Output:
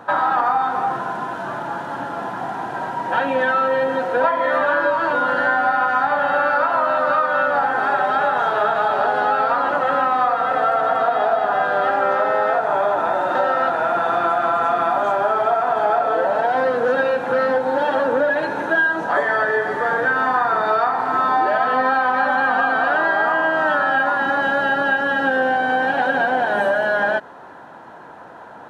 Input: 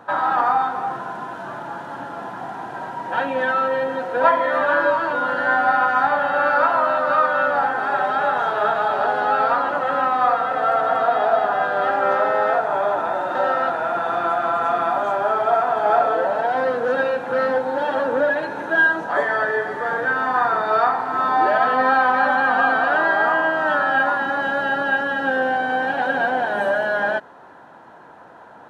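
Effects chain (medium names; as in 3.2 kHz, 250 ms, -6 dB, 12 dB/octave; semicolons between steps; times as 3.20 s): compression, threshold -19 dBFS, peak gain reduction 8.5 dB; trim +4.5 dB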